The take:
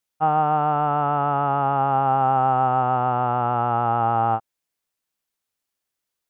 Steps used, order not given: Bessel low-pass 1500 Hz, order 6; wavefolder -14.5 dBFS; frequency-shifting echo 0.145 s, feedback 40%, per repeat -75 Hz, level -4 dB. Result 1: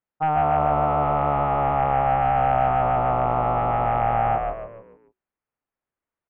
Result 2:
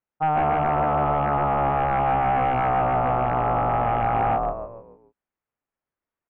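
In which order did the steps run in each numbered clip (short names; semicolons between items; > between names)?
wavefolder > frequency-shifting echo > Bessel low-pass; frequency-shifting echo > wavefolder > Bessel low-pass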